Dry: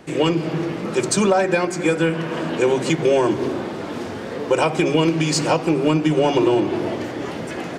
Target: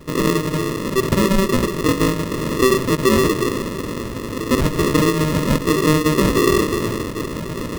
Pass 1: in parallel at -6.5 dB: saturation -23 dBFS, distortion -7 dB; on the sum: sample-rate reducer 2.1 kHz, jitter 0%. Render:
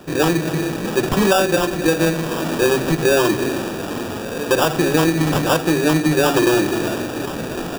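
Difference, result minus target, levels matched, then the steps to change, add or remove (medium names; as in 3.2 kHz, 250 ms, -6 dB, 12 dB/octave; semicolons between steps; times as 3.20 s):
sample-rate reducer: distortion -21 dB
change: sample-rate reducer 770 Hz, jitter 0%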